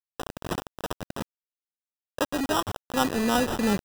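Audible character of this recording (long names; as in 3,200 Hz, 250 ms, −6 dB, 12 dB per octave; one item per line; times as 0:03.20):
aliases and images of a low sample rate 2,200 Hz, jitter 0%
sample-and-hold tremolo 2.3 Hz, depth 80%
a quantiser's noise floor 6 bits, dither none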